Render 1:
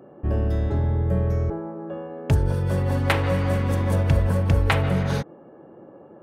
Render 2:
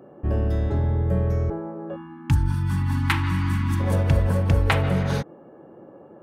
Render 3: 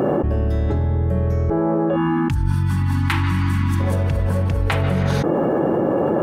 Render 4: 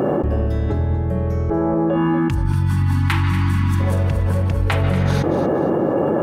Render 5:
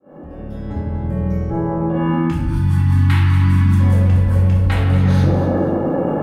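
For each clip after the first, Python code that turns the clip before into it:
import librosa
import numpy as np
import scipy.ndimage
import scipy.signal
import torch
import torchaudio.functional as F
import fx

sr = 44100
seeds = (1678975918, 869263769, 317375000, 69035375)

y1 = fx.spec_erase(x, sr, start_s=1.96, length_s=1.84, low_hz=360.0, high_hz=800.0)
y2 = fx.env_flatten(y1, sr, amount_pct=100)
y2 = y2 * 10.0 ** (-4.0 / 20.0)
y3 = fx.echo_feedback(y2, sr, ms=237, feedback_pct=32, wet_db=-12)
y4 = fx.fade_in_head(y3, sr, length_s=1.03)
y4 = fx.room_shoebox(y4, sr, seeds[0], volume_m3=250.0, walls='mixed', distance_m=2.2)
y4 = y4 * 10.0 ** (-8.0 / 20.0)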